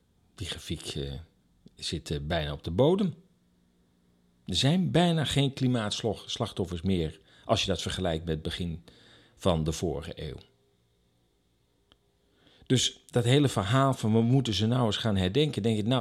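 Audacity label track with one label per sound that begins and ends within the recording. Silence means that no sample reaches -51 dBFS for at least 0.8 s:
4.470000	10.450000	sound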